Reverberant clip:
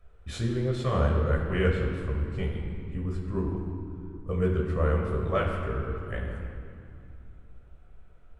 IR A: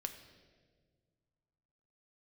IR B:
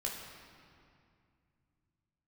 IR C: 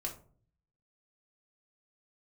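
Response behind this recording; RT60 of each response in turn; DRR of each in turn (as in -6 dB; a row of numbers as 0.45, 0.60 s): B; 1.7, 2.3, 0.50 s; 6.0, -2.5, -1.0 dB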